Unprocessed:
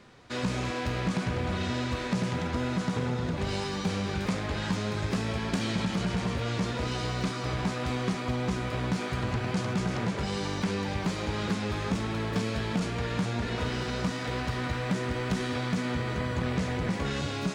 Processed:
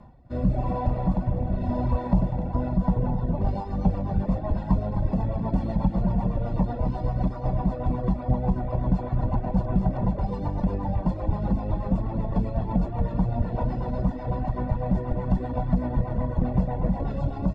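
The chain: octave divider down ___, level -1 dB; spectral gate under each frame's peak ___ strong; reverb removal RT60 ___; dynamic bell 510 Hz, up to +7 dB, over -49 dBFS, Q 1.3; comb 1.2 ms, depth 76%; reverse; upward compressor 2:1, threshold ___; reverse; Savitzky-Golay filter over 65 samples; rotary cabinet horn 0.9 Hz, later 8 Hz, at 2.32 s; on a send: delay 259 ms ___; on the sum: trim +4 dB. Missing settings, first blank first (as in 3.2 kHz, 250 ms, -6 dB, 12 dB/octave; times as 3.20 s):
2 oct, -55 dB, 1 s, -36 dBFS, -10.5 dB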